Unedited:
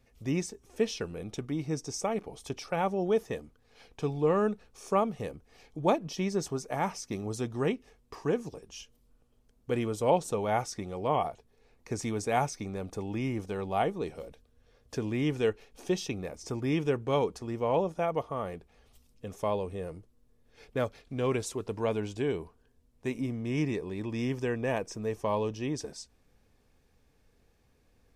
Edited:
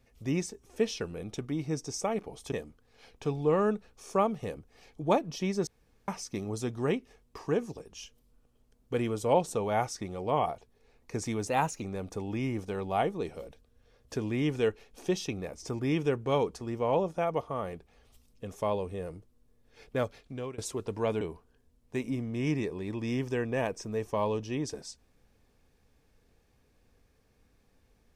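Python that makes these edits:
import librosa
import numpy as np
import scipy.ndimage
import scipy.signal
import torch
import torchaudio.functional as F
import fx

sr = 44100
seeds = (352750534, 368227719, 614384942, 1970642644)

y = fx.edit(x, sr, fx.cut(start_s=2.52, length_s=0.77),
    fx.room_tone_fill(start_s=6.44, length_s=0.41),
    fx.speed_span(start_s=12.24, length_s=0.39, speed=1.11),
    fx.fade_out_to(start_s=20.98, length_s=0.41, floor_db=-23.5),
    fx.cut(start_s=22.02, length_s=0.3), tone=tone)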